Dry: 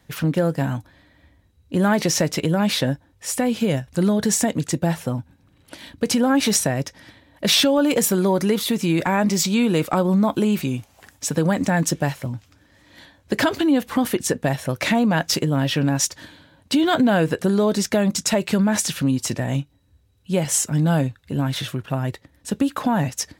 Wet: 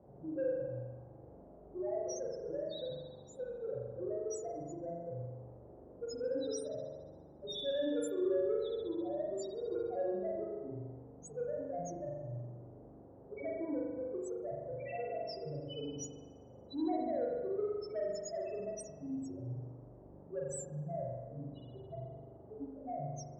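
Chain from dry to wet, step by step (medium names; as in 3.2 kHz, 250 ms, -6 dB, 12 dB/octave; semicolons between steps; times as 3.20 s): local Wiener filter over 41 samples; bass shelf 250 Hz -9.5 dB; compression, threshold -19 dBFS, peak gain reduction 5 dB; static phaser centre 510 Hz, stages 4; loudest bins only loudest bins 1; band noise 47–610 Hz -57 dBFS; saturation -27.5 dBFS, distortion -22 dB; spring tank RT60 1.3 s, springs 41 ms, chirp 35 ms, DRR -3 dB; trim -4 dB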